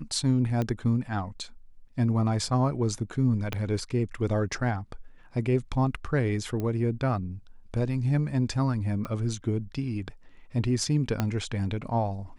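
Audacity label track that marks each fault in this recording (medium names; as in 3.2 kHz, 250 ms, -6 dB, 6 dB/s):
0.620000	0.620000	pop -17 dBFS
3.530000	3.530000	pop -15 dBFS
6.600000	6.600000	pop -20 dBFS
9.050000	9.050000	pop -22 dBFS
11.200000	11.200000	pop -12 dBFS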